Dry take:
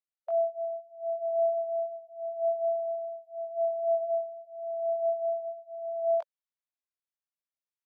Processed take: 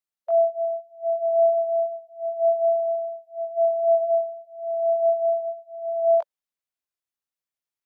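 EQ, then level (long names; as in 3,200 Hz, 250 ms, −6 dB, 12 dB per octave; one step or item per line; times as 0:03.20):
dynamic equaliser 720 Hz, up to +6 dB, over −39 dBFS, Q 0.76
+2.0 dB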